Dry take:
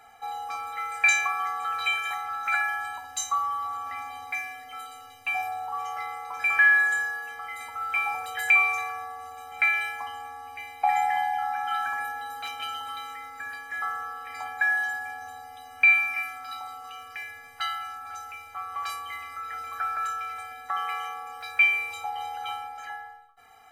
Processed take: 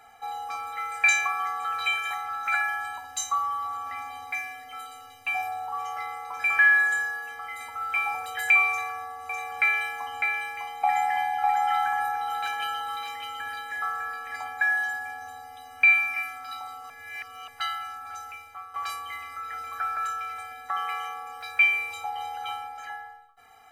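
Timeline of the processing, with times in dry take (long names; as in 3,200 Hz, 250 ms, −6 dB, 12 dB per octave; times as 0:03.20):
0:08.69–0:14.36: single-tap delay 603 ms −4 dB
0:16.90–0:17.48: reverse
0:18.30–0:18.74: fade out, to −9 dB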